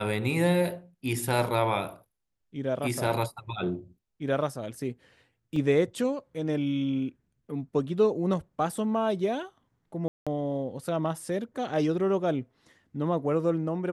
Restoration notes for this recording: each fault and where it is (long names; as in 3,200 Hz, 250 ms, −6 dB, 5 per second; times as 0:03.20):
0:05.56: drop-out 3.2 ms
0:10.08–0:10.27: drop-out 186 ms